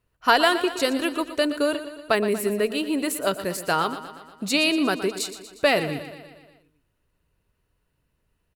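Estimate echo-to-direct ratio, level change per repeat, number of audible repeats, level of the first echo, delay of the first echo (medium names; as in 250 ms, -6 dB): -10.5 dB, -4.5 dB, 5, -12.5 dB, 119 ms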